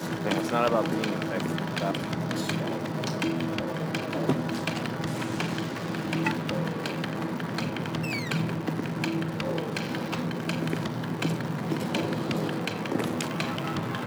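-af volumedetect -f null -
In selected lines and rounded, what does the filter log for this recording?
mean_volume: -29.2 dB
max_volume: -10.2 dB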